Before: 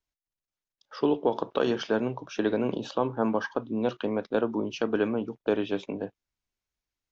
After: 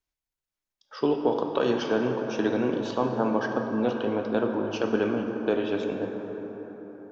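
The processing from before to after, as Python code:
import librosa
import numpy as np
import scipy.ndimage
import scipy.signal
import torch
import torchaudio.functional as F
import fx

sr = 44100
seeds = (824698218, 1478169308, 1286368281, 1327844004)

y = fx.rev_plate(x, sr, seeds[0], rt60_s=4.7, hf_ratio=0.4, predelay_ms=0, drr_db=2.5)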